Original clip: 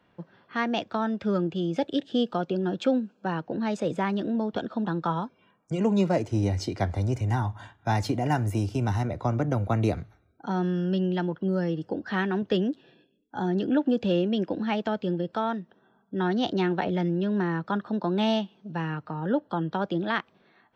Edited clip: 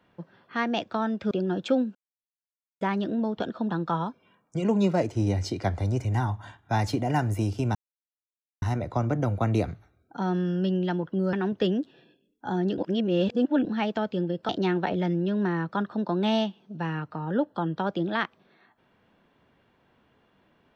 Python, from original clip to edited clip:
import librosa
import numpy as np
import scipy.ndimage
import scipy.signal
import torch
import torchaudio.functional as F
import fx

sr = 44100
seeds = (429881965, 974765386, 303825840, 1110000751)

y = fx.edit(x, sr, fx.cut(start_s=1.31, length_s=1.16),
    fx.silence(start_s=3.11, length_s=0.86),
    fx.insert_silence(at_s=8.91, length_s=0.87),
    fx.cut(start_s=11.62, length_s=0.61),
    fx.reverse_span(start_s=13.68, length_s=0.87),
    fx.cut(start_s=15.39, length_s=1.05), tone=tone)